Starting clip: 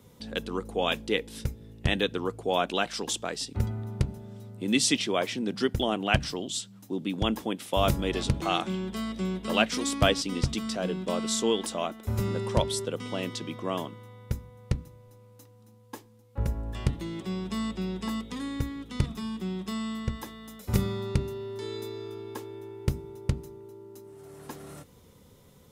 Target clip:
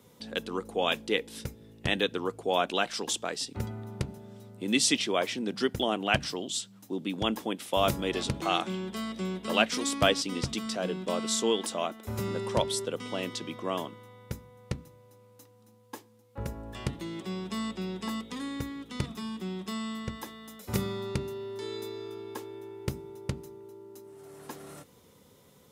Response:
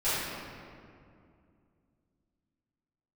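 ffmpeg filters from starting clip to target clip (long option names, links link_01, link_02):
-af "highpass=frequency=210:poles=1"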